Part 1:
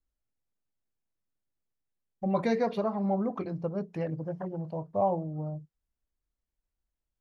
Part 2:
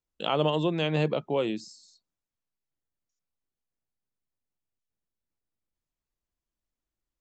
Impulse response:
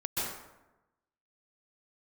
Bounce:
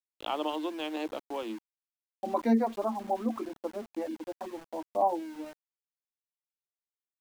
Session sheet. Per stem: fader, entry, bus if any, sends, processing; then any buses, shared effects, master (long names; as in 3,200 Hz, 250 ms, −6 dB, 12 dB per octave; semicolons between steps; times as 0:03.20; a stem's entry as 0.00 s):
+2.0 dB, 0.00 s, no send, reverb reduction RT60 0.91 s; low-shelf EQ 310 Hz +12 dB
−2.0 dB, 0.00 s, no send, adaptive Wiener filter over 41 samples; high-shelf EQ 3,700 Hz +9.5 dB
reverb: not used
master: Chebyshev high-pass with heavy ripple 220 Hz, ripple 9 dB; centre clipping without the shift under −45 dBFS